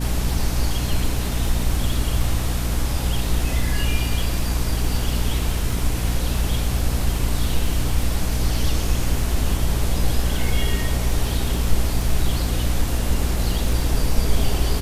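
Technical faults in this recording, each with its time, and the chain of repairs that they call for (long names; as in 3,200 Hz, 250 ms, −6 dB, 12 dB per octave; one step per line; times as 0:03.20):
surface crackle 20 per second −26 dBFS
mains hum 60 Hz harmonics 5 −24 dBFS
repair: click removal
hum removal 60 Hz, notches 5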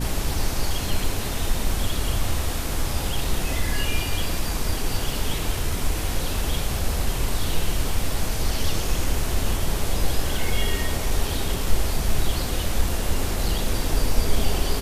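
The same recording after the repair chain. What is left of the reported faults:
none of them is left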